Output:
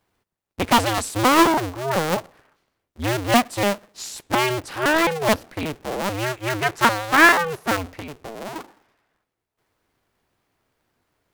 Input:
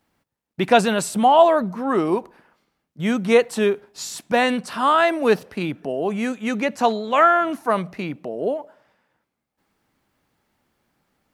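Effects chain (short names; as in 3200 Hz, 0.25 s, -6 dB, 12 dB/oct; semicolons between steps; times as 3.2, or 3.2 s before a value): cycle switcher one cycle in 2, inverted; 6.17–7.32 dynamic EQ 1500 Hz, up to +7 dB, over -30 dBFS, Q 1.1; 7.97–8.56 compressor 4:1, threshold -30 dBFS, peak gain reduction 10.5 dB; gain -2 dB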